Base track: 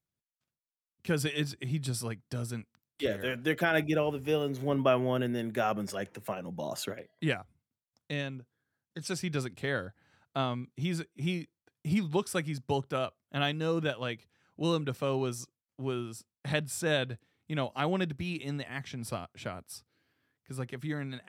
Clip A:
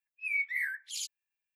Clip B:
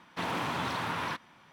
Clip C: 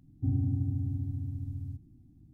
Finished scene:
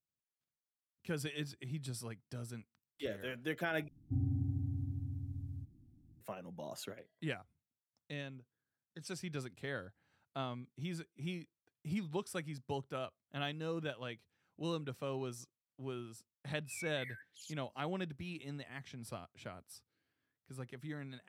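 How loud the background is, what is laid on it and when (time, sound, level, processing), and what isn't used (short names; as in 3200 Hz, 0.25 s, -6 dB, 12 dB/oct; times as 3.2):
base track -9.5 dB
3.88 replace with C -6 dB
16.46 add A -16.5 dB
not used: B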